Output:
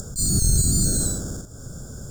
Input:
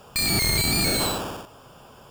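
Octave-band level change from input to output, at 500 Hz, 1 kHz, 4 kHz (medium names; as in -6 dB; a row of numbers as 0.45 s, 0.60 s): -6.0 dB, -15.5 dB, -9.0 dB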